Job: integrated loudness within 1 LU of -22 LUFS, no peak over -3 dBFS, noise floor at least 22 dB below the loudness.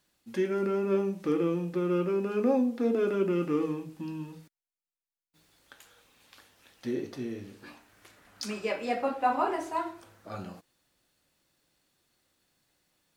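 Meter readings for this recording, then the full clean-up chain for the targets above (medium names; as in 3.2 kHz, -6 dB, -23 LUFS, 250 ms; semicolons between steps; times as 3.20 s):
loudness -30.0 LUFS; peak level -14.5 dBFS; loudness target -22.0 LUFS
-> trim +8 dB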